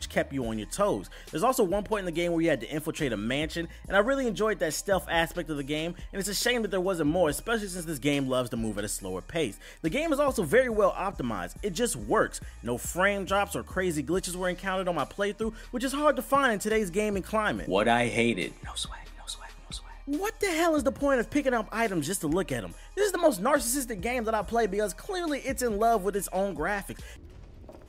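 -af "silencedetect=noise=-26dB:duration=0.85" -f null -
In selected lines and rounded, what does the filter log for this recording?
silence_start: 26.90
silence_end: 27.88 | silence_duration: 0.98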